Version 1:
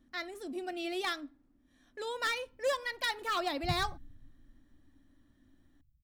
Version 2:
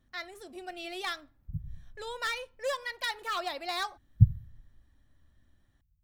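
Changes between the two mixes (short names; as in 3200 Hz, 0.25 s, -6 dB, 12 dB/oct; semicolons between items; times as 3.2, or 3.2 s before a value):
background: entry -2.15 s; master: add bell 280 Hz -14 dB 0.6 oct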